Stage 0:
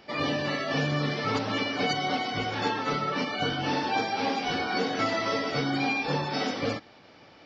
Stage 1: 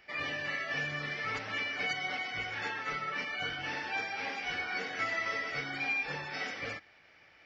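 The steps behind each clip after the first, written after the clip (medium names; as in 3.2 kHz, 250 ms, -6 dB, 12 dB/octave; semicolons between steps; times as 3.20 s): ten-band graphic EQ 125 Hz -7 dB, 250 Hz -12 dB, 500 Hz -5 dB, 1 kHz -7 dB, 2 kHz +9 dB, 4 kHz -8 dB; trim -5 dB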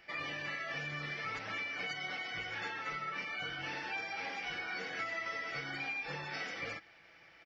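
comb 6 ms, depth 35%; compression 3:1, threshold -38 dBFS, peak gain reduction 8.5 dB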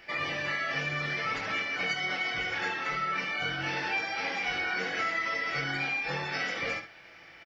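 early reflections 22 ms -6 dB, 71 ms -8.5 dB; trim +7 dB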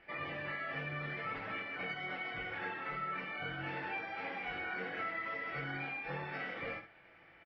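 distance through air 450 m; trim -5 dB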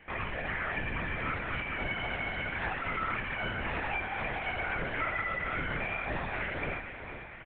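on a send: feedback delay 458 ms, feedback 57%, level -9.5 dB; on the sum: LPC vocoder at 8 kHz whisper; trim +6 dB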